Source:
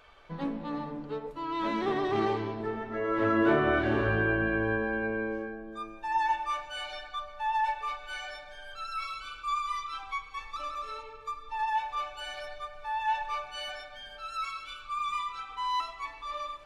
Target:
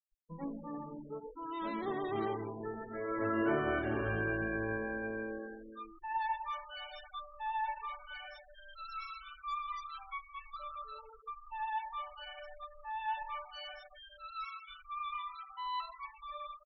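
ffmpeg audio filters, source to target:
-filter_complex "[0:a]asplit=4[s0][s1][s2][s3];[s1]adelay=158,afreqshift=45,volume=0.126[s4];[s2]adelay=316,afreqshift=90,volume=0.0442[s5];[s3]adelay=474,afreqshift=135,volume=0.0155[s6];[s0][s4][s5][s6]amix=inputs=4:normalize=0,afftfilt=real='re*gte(hypot(re,im),0.02)':imag='im*gte(hypot(re,im),0.02)':win_size=1024:overlap=0.75,volume=0.422"

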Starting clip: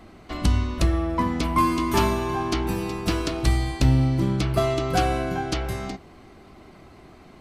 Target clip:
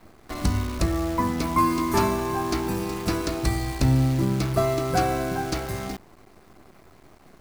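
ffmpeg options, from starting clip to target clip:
-af "equalizer=f=3100:t=o:w=0.46:g=-10,bandreject=f=60:t=h:w=6,bandreject=f=120:t=h:w=6,bandreject=f=180:t=h:w=6,bandreject=f=240:t=h:w=6,bandreject=f=300:t=h:w=6,acrusher=bits=7:dc=4:mix=0:aa=0.000001"

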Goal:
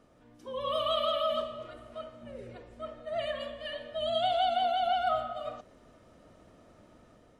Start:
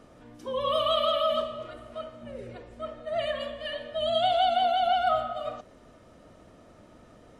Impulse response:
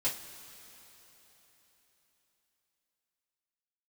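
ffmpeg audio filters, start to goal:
-af "dynaudnorm=f=230:g=5:m=1.78,volume=0.355"

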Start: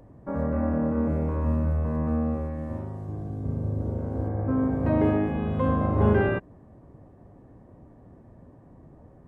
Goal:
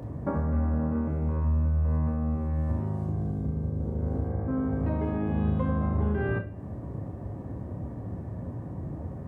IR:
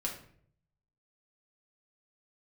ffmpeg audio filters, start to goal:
-filter_complex "[0:a]highpass=f=64:w=0.5412,highpass=f=64:w=1.3066,lowshelf=f=120:g=11.5,acompressor=threshold=0.0178:ratio=6,asplit=2[s0][s1];[1:a]atrim=start_sample=2205,adelay=28[s2];[s1][s2]afir=irnorm=-1:irlink=0,volume=0.355[s3];[s0][s3]amix=inputs=2:normalize=0,volume=2.82"

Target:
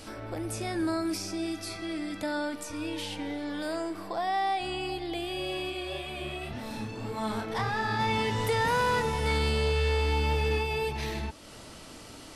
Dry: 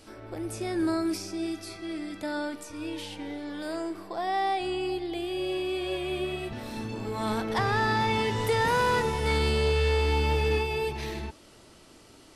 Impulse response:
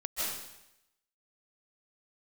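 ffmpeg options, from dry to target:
-filter_complex "[0:a]equalizer=f=370:w=5.2:g=-7.5,acompressor=threshold=0.00355:ratio=1.5,asplit=3[s0][s1][s2];[s0]afade=t=out:st=5.69:d=0.02[s3];[s1]flanger=delay=22.5:depth=7.7:speed=1.8,afade=t=in:st=5.69:d=0.02,afade=t=out:st=7.98:d=0.02[s4];[s2]afade=t=in:st=7.98:d=0.02[s5];[s3][s4][s5]amix=inputs=3:normalize=0,volume=2.51"

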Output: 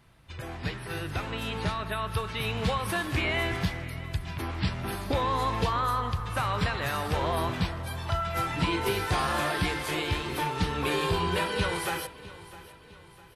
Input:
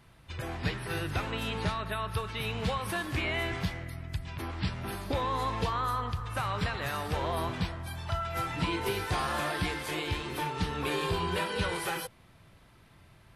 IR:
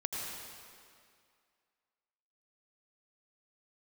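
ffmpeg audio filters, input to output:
-af "dynaudnorm=f=310:g=11:m=1.78,aecho=1:1:656|1312|1968|2624:0.126|0.0592|0.0278|0.0131,volume=0.841"

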